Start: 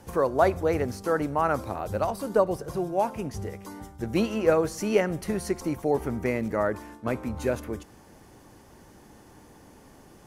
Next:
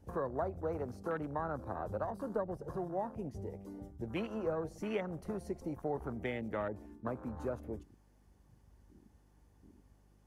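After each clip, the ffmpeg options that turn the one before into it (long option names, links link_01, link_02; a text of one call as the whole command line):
ffmpeg -i in.wav -filter_complex "[0:a]acrossover=split=230|540[link_01][link_02][link_03];[link_01]acompressor=threshold=-39dB:ratio=4[link_04];[link_02]acompressor=threshold=-40dB:ratio=4[link_05];[link_03]acompressor=threshold=-33dB:ratio=4[link_06];[link_04][link_05][link_06]amix=inputs=3:normalize=0,afwtdn=0.0126,aeval=exprs='val(0)+0.000891*(sin(2*PI*50*n/s)+sin(2*PI*2*50*n/s)/2+sin(2*PI*3*50*n/s)/3+sin(2*PI*4*50*n/s)/4+sin(2*PI*5*50*n/s)/5)':channel_layout=same,volume=-4.5dB" out.wav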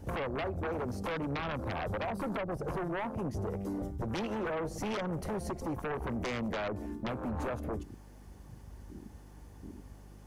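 ffmpeg -i in.wav -af "acompressor=threshold=-42dB:ratio=2.5,aeval=exprs='0.0282*sin(PI/2*3.16*val(0)/0.0282)':channel_layout=same" out.wav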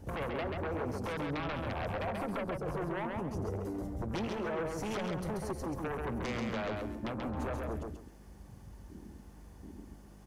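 ffmpeg -i in.wav -af "aecho=1:1:135|270|405:0.668|0.154|0.0354,volume=-2.5dB" out.wav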